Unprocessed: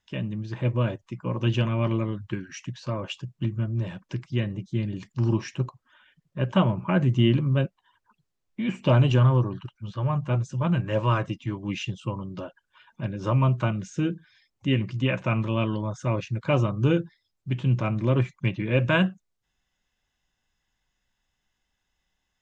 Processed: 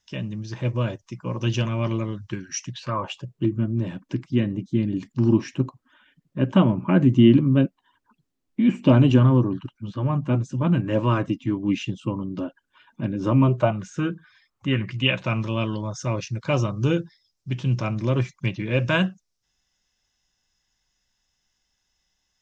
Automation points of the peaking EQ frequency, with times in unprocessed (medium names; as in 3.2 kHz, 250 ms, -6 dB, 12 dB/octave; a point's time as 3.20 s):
peaking EQ +13.5 dB 0.7 oct
2.68 s 5.7 kHz
2.96 s 1.1 kHz
3.56 s 270 Hz
13.42 s 270 Hz
13.83 s 1.2 kHz
14.70 s 1.2 kHz
15.34 s 5.5 kHz